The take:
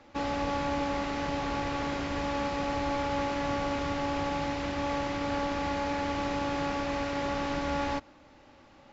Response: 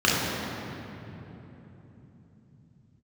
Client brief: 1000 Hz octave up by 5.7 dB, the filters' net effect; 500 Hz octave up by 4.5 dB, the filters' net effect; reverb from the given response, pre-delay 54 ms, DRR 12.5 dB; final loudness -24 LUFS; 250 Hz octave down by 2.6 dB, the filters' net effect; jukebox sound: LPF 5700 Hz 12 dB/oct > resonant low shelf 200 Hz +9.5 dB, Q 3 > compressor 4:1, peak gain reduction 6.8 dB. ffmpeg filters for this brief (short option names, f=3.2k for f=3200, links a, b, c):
-filter_complex "[0:a]equalizer=f=250:t=o:g=-6,equalizer=f=500:t=o:g=6,equalizer=f=1k:t=o:g=6,asplit=2[a][b];[1:a]atrim=start_sample=2205,adelay=54[c];[b][c]afir=irnorm=-1:irlink=0,volume=-32dB[d];[a][d]amix=inputs=2:normalize=0,lowpass=5.7k,lowshelf=f=200:t=q:w=3:g=9.5,acompressor=threshold=-27dB:ratio=4,volume=7.5dB"